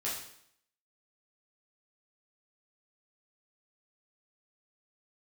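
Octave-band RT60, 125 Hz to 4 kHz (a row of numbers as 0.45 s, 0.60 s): 0.65 s, 0.70 s, 0.70 s, 0.70 s, 0.65 s, 0.65 s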